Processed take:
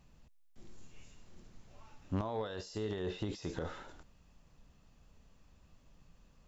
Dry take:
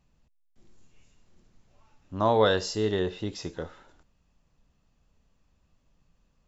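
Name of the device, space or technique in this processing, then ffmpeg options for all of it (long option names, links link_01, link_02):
de-esser from a sidechain: -filter_complex "[0:a]asplit=2[link_01][link_02];[link_02]highpass=frequency=5000:poles=1,apad=whole_len=285716[link_03];[link_01][link_03]sidechaincompress=threshold=-55dB:ratio=12:attack=0.9:release=38,volume=5dB"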